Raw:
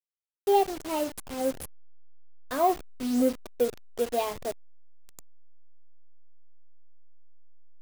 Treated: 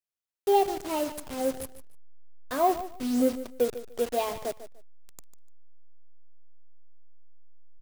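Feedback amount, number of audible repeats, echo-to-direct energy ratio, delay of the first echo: 21%, 2, −13.5 dB, 148 ms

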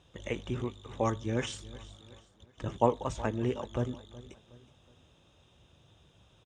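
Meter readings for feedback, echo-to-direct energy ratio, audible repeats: 44%, −18.0 dB, 3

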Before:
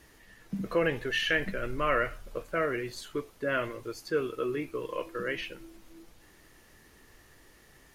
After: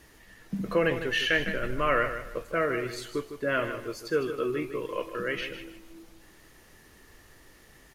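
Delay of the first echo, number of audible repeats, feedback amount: 155 ms, 3, 28%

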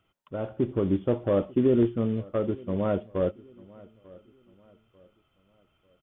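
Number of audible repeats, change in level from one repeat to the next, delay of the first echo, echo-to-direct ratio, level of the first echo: 2, −8.5 dB, 894 ms, −22.5 dB, −23.0 dB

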